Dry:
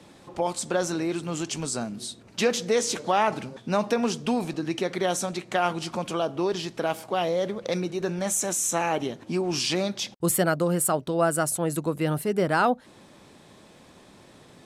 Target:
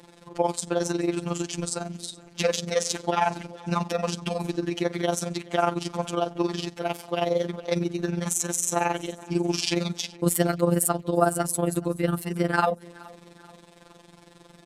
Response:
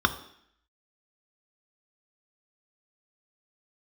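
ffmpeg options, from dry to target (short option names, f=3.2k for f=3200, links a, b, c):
-af "tremolo=f=22:d=0.788,aecho=1:1:426|852|1278:0.0708|0.0326|0.015,afftfilt=real='hypot(re,im)*cos(PI*b)':imag='0':win_size=1024:overlap=0.75,volume=6dB"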